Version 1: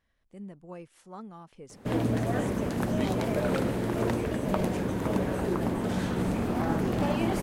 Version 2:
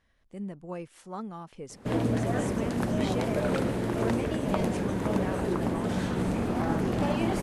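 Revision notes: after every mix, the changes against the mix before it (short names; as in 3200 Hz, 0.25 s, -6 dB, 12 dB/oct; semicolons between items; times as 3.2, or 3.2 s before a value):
speech +5.5 dB; master: add LPF 12000 Hz 24 dB/oct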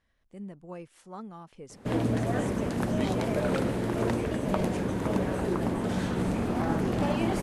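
speech -4.0 dB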